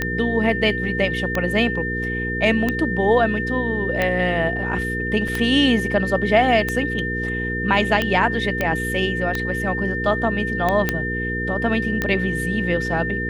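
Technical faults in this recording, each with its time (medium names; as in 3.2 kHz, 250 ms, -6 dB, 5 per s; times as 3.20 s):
hum 60 Hz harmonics 8 -27 dBFS
tick 45 rpm -8 dBFS
whine 1.8 kHz -25 dBFS
5.28 s: dropout 3.3 ms
8.61 s: pop -8 dBFS
10.89 s: pop -5 dBFS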